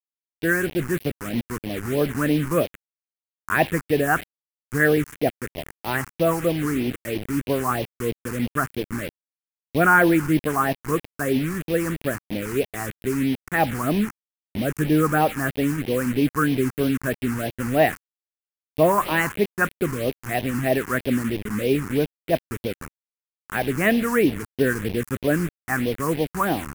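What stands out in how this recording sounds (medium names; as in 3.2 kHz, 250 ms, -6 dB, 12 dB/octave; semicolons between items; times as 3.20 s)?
a quantiser's noise floor 6-bit, dither none; phasing stages 4, 3.1 Hz, lowest notch 580–1300 Hz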